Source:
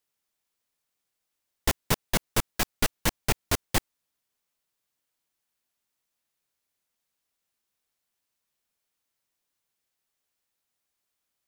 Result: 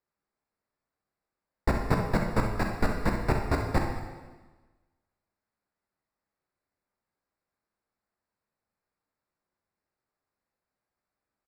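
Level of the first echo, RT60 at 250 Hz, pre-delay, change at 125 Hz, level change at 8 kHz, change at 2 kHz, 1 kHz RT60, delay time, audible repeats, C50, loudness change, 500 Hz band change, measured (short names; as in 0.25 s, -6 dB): -8.5 dB, 1.4 s, 5 ms, +4.5 dB, -17.5 dB, -2.0 dB, 1.3 s, 65 ms, 1, 3.0 dB, -1.0 dB, +3.5 dB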